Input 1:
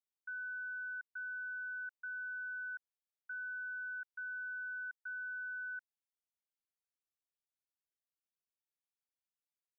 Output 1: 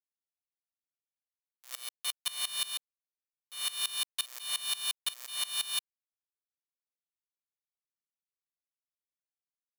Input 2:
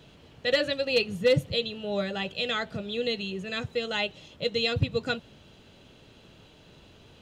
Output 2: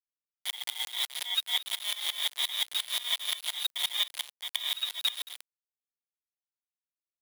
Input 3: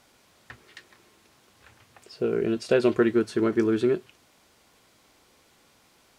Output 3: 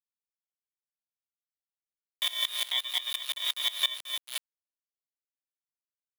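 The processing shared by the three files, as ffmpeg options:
-filter_complex "[0:a]aecho=1:1:7.4:0.7,asplit=2[link_01][link_02];[link_02]adelay=220,lowpass=frequency=1900:poles=1,volume=-7dB,asplit=2[link_03][link_04];[link_04]adelay=220,lowpass=frequency=1900:poles=1,volume=0.38,asplit=2[link_05][link_06];[link_06]adelay=220,lowpass=frequency=1900:poles=1,volume=0.38,asplit=2[link_07][link_08];[link_08]adelay=220,lowpass=frequency=1900:poles=1,volume=0.38[link_09];[link_01][link_03][link_05][link_07][link_09]amix=inputs=5:normalize=0,dynaudnorm=framelen=230:gausssize=13:maxgain=10dB,acrusher=samples=36:mix=1:aa=0.000001,lowpass=frequency=3300:width_type=q:width=0.5098,lowpass=frequency=3300:width_type=q:width=0.6013,lowpass=frequency=3300:width_type=q:width=0.9,lowpass=frequency=3300:width_type=q:width=2.563,afreqshift=-3900,acrusher=bits=3:mix=0:aa=0.000001,highpass=660,acompressor=threshold=-18dB:ratio=5,aeval=exprs='val(0)*pow(10,-21*if(lt(mod(-5.7*n/s,1),2*abs(-5.7)/1000),1-mod(-5.7*n/s,1)/(2*abs(-5.7)/1000),(mod(-5.7*n/s,1)-2*abs(-5.7)/1000)/(1-2*abs(-5.7)/1000))/20)':channel_layout=same,volume=-2.5dB"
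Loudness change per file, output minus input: +9.0, −2.0, −5.0 LU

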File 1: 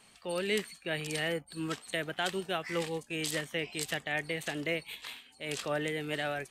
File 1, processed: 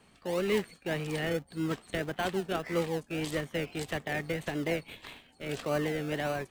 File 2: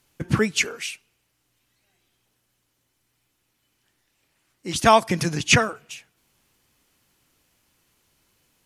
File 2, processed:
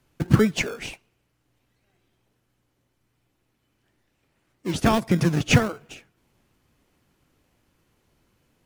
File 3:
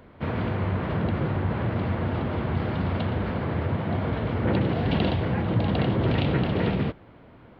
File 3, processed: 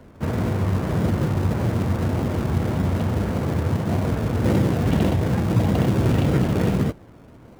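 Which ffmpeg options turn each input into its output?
-filter_complex "[0:a]highshelf=frequency=2600:gain=-11,acrossover=split=310|3000[link_01][link_02][link_03];[link_02]acompressor=threshold=-25dB:ratio=3[link_04];[link_01][link_04][link_03]amix=inputs=3:normalize=0,asplit=2[link_05][link_06];[link_06]acrusher=samples=35:mix=1:aa=0.000001:lfo=1:lforange=21:lforate=1.7,volume=-6dB[link_07];[link_05][link_07]amix=inputs=2:normalize=0,volume=1.5dB"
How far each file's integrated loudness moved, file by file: +1.5, −1.5, +4.0 LU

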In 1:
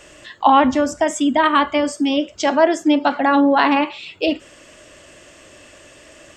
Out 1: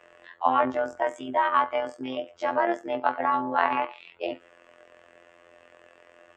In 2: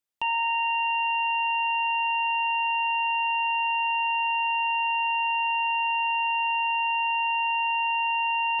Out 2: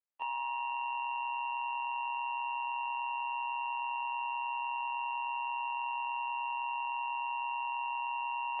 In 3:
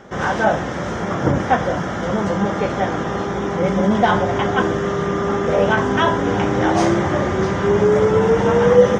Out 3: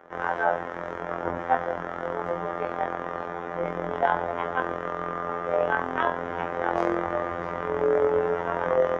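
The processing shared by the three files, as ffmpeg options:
-filter_complex "[0:a]afftfilt=real='hypot(re,im)*cos(PI*b)':imag='0':win_size=2048:overlap=0.75,tremolo=f=130:d=0.571,acrossover=split=400 2300:gain=0.2 1 0.1[link_01][link_02][link_03];[link_01][link_02][link_03]amix=inputs=3:normalize=0"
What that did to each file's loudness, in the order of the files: −10.0, −11.0, −9.5 LU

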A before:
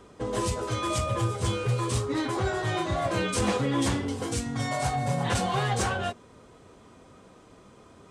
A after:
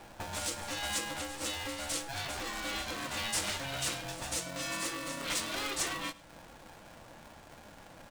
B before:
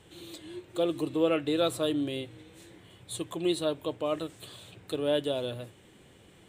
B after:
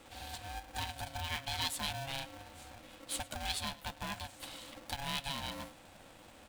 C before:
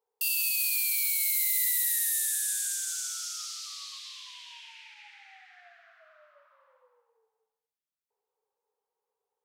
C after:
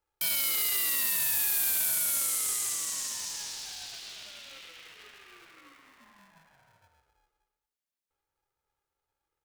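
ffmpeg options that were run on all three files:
-filter_complex "[0:a]acrossover=split=1700|3100[link_01][link_02][link_03];[link_01]acompressor=threshold=-39dB:ratio=12[link_04];[link_04][link_02][link_03]amix=inputs=3:normalize=0,volume=22.5dB,asoftclip=hard,volume=-22.5dB,aecho=1:1:104:0.0944,aeval=exprs='val(0)*sgn(sin(2*PI*410*n/s))':channel_layout=same"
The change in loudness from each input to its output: −7.0, −9.0, −0.5 LU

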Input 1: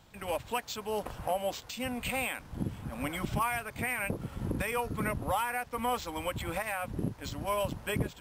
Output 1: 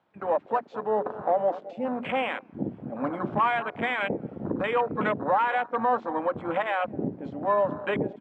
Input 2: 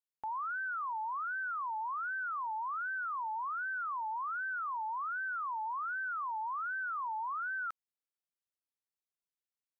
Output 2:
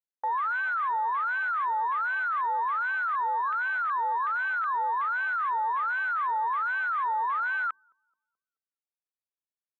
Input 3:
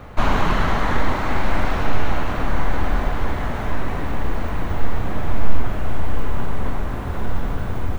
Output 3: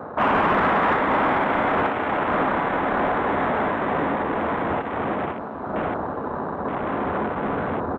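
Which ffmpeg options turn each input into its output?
-filter_complex "[0:a]bandreject=frequency=60:width_type=h:width=6,bandreject=frequency=120:width_type=h:width=6,bandreject=frequency=180:width_type=h:width=6,bandreject=frequency=240:width_type=h:width=6,bandreject=frequency=300:width_type=h:width=6,bandreject=frequency=360:width_type=h:width=6,bandreject=frequency=420:width_type=h:width=6,asplit=2[link_01][link_02];[link_02]adelay=215,lowpass=frequency=840:poles=1,volume=-14.5dB,asplit=2[link_03][link_04];[link_04]adelay=215,lowpass=frequency=840:poles=1,volume=0.54,asplit=2[link_05][link_06];[link_06]adelay=215,lowpass=frequency=840:poles=1,volume=0.54,asplit=2[link_07][link_08];[link_08]adelay=215,lowpass=frequency=840:poles=1,volume=0.54,asplit=2[link_09][link_10];[link_10]adelay=215,lowpass=frequency=840:poles=1,volume=0.54[link_11];[link_01][link_03][link_05][link_07][link_09][link_11]amix=inputs=6:normalize=0,acrossover=split=2000[link_12][link_13];[link_12]acontrast=72[link_14];[link_14][link_13]amix=inputs=2:normalize=0,highpass=250,lowpass=2600,asoftclip=type=tanh:threshold=-18.5dB,afwtdn=0.02,volume=3.5dB"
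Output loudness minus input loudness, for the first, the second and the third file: +6.0, +9.0, +2.5 LU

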